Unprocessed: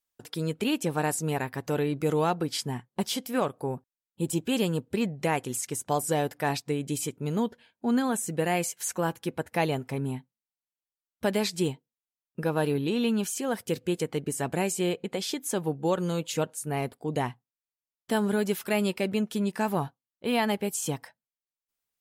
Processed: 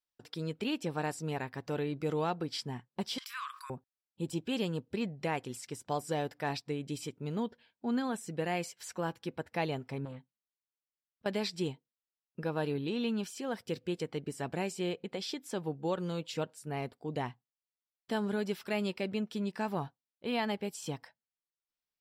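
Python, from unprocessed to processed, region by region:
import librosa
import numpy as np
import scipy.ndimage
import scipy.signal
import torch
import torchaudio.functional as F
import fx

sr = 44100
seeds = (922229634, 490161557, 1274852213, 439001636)

y = fx.chain(x, sr, fx.brickwall_highpass(low_hz=980.0),
    fx.env_flatten(amount_pct=70), at=(3.18, 3.7))
y = fx.chain(y, sr, fx.air_absorb(metres=58.0),
    fx.auto_swell(attack_ms=212.0),
    fx.transformer_sat(knee_hz=640.0), at=(10.05, 11.26))
y = fx.high_shelf_res(y, sr, hz=7600.0, db=-9.0, q=1.5)
y = fx.notch(y, sr, hz=6500.0, q=5.4)
y = y * 10.0 ** (-7.0 / 20.0)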